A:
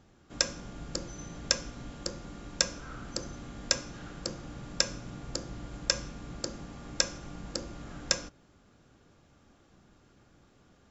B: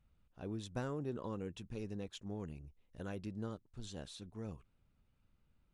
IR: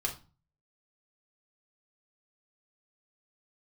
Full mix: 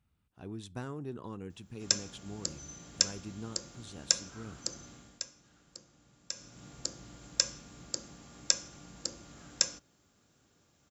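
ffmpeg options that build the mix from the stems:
-filter_complex "[0:a]aemphasis=mode=production:type=75kf,adelay=1500,volume=4.5dB,afade=type=out:start_time=4.9:duration=0.32:silence=0.223872,afade=type=in:start_time=6.3:duration=0.37:silence=0.223872[link_01];[1:a]equalizer=frequency=540:width=3.6:gain=-7,volume=0dB,asplit=2[link_02][link_03];[link_03]volume=-23dB[link_04];[2:a]atrim=start_sample=2205[link_05];[link_04][link_05]afir=irnorm=-1:irlink=0[link_06];[link_01][link_02][link_06]amix=inputs=3:normalize=0,highpass=65,equalizer=frequency=8600:width_type=o:width=0.28:gain=4"

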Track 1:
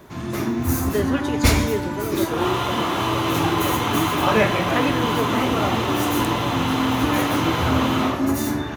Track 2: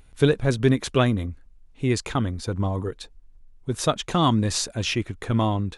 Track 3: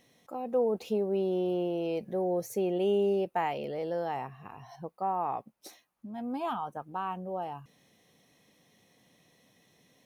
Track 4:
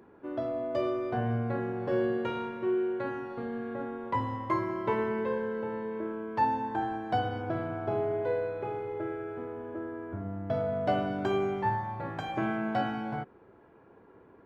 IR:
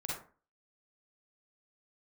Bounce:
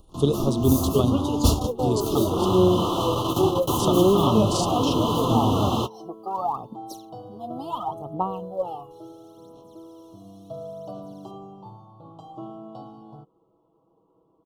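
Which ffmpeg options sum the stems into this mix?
-filter_complex "[0:a]volume=-1.5dB[link_01];[1:a]tremolo=f=25:d=0.4,volume=-0.5dB,asplit=2[link_02][link_03];[2:a]aphaser=in_gain=1:out_gain=1:delay=2.8:decay=0.79:speed=0.72:type=sinusoidal,adelay=1250,volume=1dB[link_04];[3:a]aecho=1:1:6.2:0.77,volume=-10dB[link_05];[link_03]apad=whole_len=386392[link_06];[link_01][link_06]sidechaingate=range=-49dB:threshold=-50dB:ratio=16:detection=peak[link_07];[link_07][link_02][link_04][link_05]amix=inputs=4:normalize=0,acrossover=split=350[link_08][link_09];[link_09]acompressor=threshold=-21dB:ratio=2.5[link_10];[link_08][link_10]amix=inputs=2:normalize=0,asuperstop=centerf=1900:order=12:qfactor=1.2"

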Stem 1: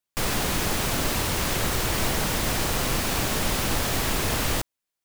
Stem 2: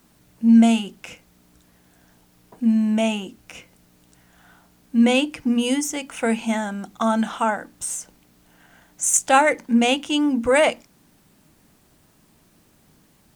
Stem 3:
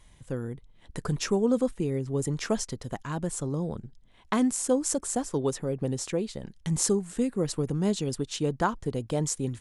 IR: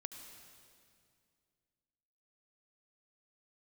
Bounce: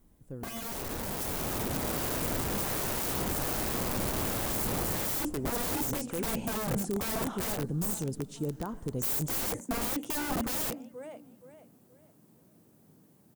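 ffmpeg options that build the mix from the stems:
-filter_complex "[0:a]lowpass=frequency=1600:poles=1,tremolo=f=1.3:d=0.3,adelay=550,volume=-2dB,asplit=2[link_01][link_02];[link_02]volume=-12dB[link_03];[1:a]highpass=frequency=100:width=0.5412,highpass=frequency=100:width=1.3066,equalizer=frequency=450:width_type=o:width=1:gain=3,volume=-7.5dB,asplit=2[link_04][link_05];[link_05]volume=-23dB[link_06];[2:a]alimiter=limit=-20dB:level=0:latency=1:release=66,volume=-10dB,asplit=2[link_07][link_08];[link_08]volume=-6dB[link_09];[3:a]atrim=start_sample=2205[link_10];[link_03][link_09]amix=inputs=2:normalize=0[link_11];[link_11][link_10]afir=irnorm=-1:irlink=0[link_12];[link_06]aecho=0:1:473|946|1419|1892:1|0.3|0.09|0.027[link_13];[link_01][link_04][link_07][link_12][link_13]amix=inputs=5:normalize=0,aeval=exprs='(mod(23.7*val(0)+1,2)-1)/23.7':channel_layout=same,dynaudnorm=framelen=370:gausssize=7:maxgain=6dB,equalizer=frequency=3000:width=0.31:gain=-13.5"

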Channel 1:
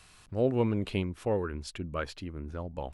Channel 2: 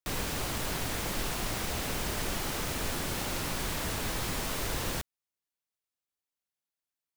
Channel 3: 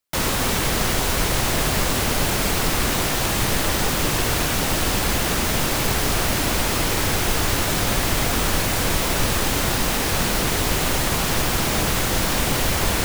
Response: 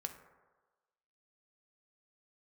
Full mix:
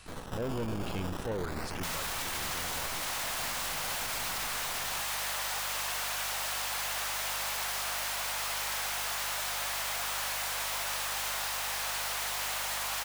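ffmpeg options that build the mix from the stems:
-filter_complex "[0:a]volume=2dB,asplit=3[link_01][link_02][link_03];[link_02]volume=-15dB[link_04];[1:a]acrusher=samples=15:mix=1:aa=0.000001:lfo=1:lforange=15:lforate=0.33,aeval=exprs='max(val(0),0)':channel_layout=same,volume=3dB,asplit=2[link_05][link_06];[link_06]volume=-7dB[link_07];[2:a]highpass=frequency=690:width=0.5412,highpass=frequency=690:width=1.3066,aeval=exprs='val(0)+0.00794*(sin(2*PI*50*n/s)+sin(2*PI*2*50*n/s)/2+sin(2*PI*3*50*n/s)/3+sin(2*PI*4*50*n/s)/4+sin(2*PI*5*50*n/s)/5)':channel_layout=same,asoftclip=type=tanh:threshold=-16.5dB,adelay=1700,volume=-3.5dB[link_08];[link_03]apad=whole_len=315840[link_09];[link_05][link_09]sidechaingate=range=-33dB:threshold=-49dB:ratio=16:detection=peak[link_10];[link_01][link_10]amix=inputs=2:normalize=0,asoftclip=type=hard:threshold=-26.5dB,alimiter=level_in=9dB:limit=-24dB:level=0:latency=1:release=11,volume=-9dB,volume=0dB[link_11];[3:a]atrim=start_sample=2205[link_12];[link_04][link_07]amix=inputs=2:normalize=0[link_13];[link_13][link_12]afir=irnorm=-1:irlink=0[link_14];[link_08][link_11][link_14]amix=inputs=3:normalize=0,alimiter=level_in=3dB:limit=-24dB:level=0:latency=1:release=56,volume=-3dB"

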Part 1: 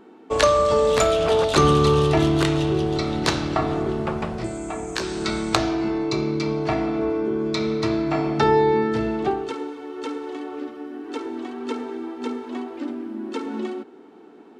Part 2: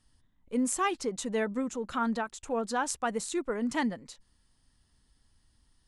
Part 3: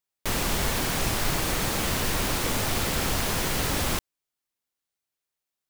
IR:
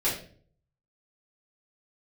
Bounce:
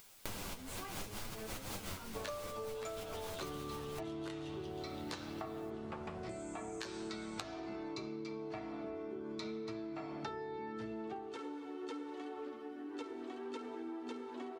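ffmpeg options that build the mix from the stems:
-filter_complex "[0:a]lowshelf=frequency=160:gain=-4,adelay=1850,volume=-6.5dB[link_01];[1:a]flanger=delay=17.5:depth=5.4:speed=2.4,volume=-9.5dB,asplit=2[link_02][link_03];[2:a]bandreject=frequency=1800:width=12,acompressor=mode=upward:threshold=-30dB:ratio=2.5,volume=-1dB[link_04];[link_03]apad=whole_len=251320[link_05];[link_04][link_05]sidechaincompress=threshold=-51dB:ratio=16:attack=37:release=100[link_06];[link_01][link_02][link_06]amix=inputs=3:normalize=0,flanger=delay=9:depth=1.7:regen=37:speed=0.72:shape=sinusoidal,acompressor=threshold=-40dB:ratio=12"

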